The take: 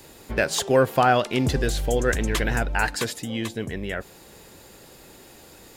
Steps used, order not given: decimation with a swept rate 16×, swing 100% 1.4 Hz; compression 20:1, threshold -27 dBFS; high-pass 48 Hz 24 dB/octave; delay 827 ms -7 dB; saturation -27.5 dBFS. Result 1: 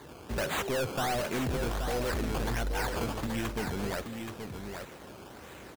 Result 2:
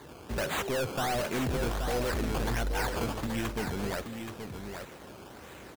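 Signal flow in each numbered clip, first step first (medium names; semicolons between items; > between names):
decimation with a swept rate > high-pass > saturation > delay > compression; decimation with a swept rate > high-pass > saturation > compression > delay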